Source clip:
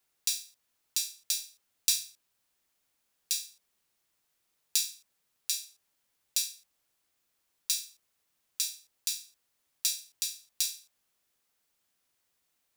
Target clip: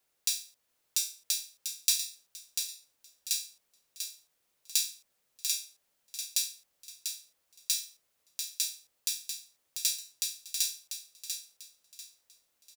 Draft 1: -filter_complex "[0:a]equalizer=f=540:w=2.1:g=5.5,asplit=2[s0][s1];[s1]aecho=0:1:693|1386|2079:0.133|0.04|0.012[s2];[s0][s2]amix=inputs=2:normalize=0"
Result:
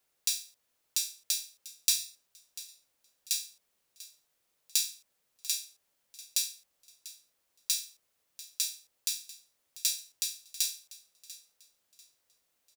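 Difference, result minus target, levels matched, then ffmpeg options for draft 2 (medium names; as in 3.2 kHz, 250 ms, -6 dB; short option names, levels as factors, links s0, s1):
echo-to-direct -10.5 dB
-filter_complex "[0:a]equalizer=f=540:w=2.1:g=5.5,asplit=2[s0][s1];[s1]aecho=0:1:693|1386|2079|2772:0.447|0.134|0.0402|0.0121[s2];[s0][s2]amix=inputs=2:normalize=0"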